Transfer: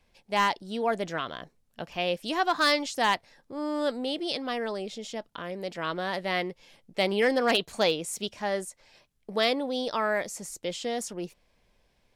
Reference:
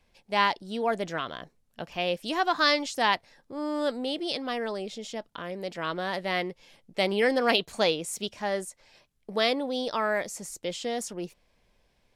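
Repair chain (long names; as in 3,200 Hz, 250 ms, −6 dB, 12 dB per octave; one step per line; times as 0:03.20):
clipped peaks rebuilt −15 dBFS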